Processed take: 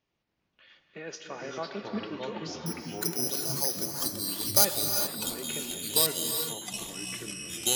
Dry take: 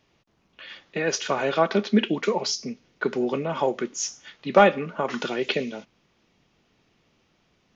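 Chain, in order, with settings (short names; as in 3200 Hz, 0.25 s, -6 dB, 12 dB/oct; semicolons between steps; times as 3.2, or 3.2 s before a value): 2.66–4.65 careless resampling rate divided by 8×, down none, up zero stuff; echoes that change speed 0.208 s, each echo -4 st, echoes 3; non-linear reverb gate 0.44 s rising, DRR 5.5 dB; gain -15.5 dB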